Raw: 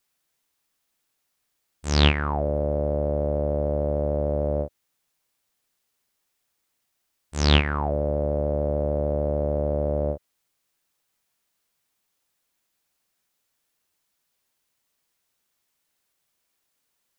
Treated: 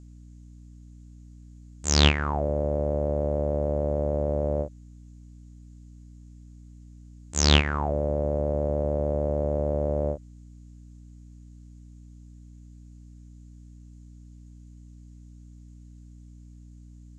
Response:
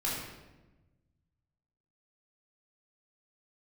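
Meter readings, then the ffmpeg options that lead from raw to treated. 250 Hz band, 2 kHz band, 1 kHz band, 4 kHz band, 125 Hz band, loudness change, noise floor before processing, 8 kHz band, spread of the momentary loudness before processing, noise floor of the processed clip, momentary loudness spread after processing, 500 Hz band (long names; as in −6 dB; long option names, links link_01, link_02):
−1.5 dB, −0.5 dB, −1.0 dB, +1.5 dB, −1.5 dB, −1.0 dB, −76 dBFS, can't be measured, 7 LU, −48 dBFS, 9 LU, −1.5 dB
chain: -af "aeval=exprs='val(0)+0.00631*(sin(2*PI*60*n/s)+sin(2*PI*2*60*n/s)/2+sin(2*PI*3*60*n/s)/3+sin(2*PI*4*60*n/s)/4+sin(2*PI*5*60*n/s)/5)':channel_layout=same,lowpass=frequency=7000:width_type=q:width=5.7,aeval=exprs='0.944*(cos(1*acos(clip(val(0)/0.944,-1,1)))-cos(1*PI/2))+0.00944*(cos(7*acos(clip(val(0)/0.944,-1,1)))-cos(7*PI/2))':channel_layout=same,volume=-1dB"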